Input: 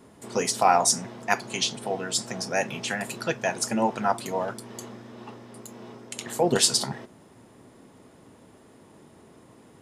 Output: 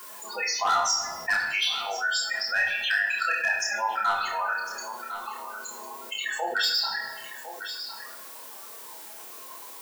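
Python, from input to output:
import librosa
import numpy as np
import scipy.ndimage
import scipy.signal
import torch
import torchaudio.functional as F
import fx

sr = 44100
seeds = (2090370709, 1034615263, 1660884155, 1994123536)

p1 = scipy.signal.sosfilt(scipy.signal.butter(2, 4800.0, 'lowpass', fs=sr, output='sos'), x)
p2 = fx.tilt_eq(p1, sr, slope=2.0)
p3 = fx.spec_topn(p2, sr, count=16)
p4 = fx.dmg_noise_colour(p3, sr, seeds[0], colour='blue', level_db=-65.0)
p5 = fx.highpass_res(p4, sr, hz=1400.0, q=2.8)
p6 = np.clip(p5, -10.0 ** (-19.5 / 20.0), 10.0 ** (-19.5 / 20.0))
p7 = fx.doubler(p6, sr, ms=29.0, db=-3)
p8 = p7 + fx.echo_single(p7, sr, ms=1053, db=-21.5, dry=0)
p9 = fx.room_shoebox(p8, sr, seeds[1], volume_m3=270.0, walls='mixed', distance_m=0.77)
p10 = fx.env_flatten(p9, sr, amount_pct=50)
y = p10 * 10.0 ** (-3.5 / 20.0)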